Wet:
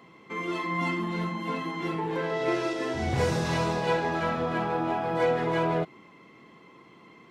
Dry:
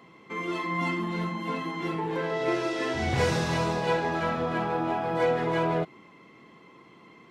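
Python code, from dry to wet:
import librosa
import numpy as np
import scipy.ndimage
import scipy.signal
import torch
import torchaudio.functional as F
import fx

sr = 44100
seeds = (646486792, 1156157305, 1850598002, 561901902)

y = fx.peak_eq(x, sr, hz=2700.0, db=-4.5, octaves=2.5, at=(2.73, 3.45))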